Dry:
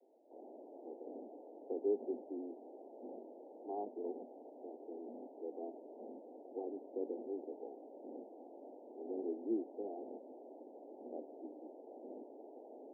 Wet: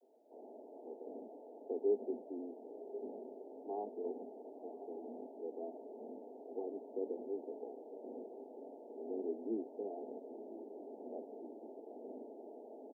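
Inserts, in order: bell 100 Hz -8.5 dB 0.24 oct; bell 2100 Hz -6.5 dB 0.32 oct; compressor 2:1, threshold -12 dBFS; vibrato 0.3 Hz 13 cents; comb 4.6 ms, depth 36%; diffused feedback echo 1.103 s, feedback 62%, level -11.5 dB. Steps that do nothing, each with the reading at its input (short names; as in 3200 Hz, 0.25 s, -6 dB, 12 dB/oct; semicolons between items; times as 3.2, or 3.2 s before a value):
bell 100 Hz: input band starts at 190 Hz; bell 2100 Hz: input band ends at 960 Hz; compressor, threshold -12 dBFS: input peak -24.5 dBFS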